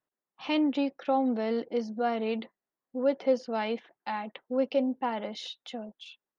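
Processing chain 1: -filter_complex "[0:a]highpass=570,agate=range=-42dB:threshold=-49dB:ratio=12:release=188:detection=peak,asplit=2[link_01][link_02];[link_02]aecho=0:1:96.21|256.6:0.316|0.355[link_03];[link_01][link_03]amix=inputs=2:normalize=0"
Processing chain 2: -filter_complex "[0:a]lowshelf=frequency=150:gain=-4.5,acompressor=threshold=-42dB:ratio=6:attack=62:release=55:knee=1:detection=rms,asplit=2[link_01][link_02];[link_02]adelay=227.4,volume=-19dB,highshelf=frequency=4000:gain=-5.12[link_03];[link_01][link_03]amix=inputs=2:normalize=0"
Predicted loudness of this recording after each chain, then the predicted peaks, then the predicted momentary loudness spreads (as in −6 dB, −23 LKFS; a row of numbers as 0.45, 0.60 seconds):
−34.5, −41.5 LKFS; −19.0, −24.0 dBFS; 12, 5 LU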